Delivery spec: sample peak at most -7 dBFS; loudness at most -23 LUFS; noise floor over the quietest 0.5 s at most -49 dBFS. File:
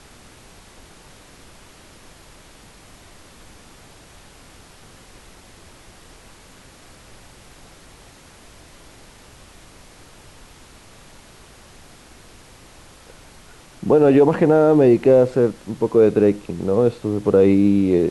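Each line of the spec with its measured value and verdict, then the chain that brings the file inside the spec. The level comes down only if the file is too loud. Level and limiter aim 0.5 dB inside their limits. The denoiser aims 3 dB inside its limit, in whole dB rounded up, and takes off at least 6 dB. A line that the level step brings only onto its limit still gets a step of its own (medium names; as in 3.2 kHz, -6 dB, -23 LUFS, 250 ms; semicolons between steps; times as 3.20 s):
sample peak -4.5 dBFS: fail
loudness -16.5 LUFS: fail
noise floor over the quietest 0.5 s -46 dBFS: fail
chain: trim -7 dB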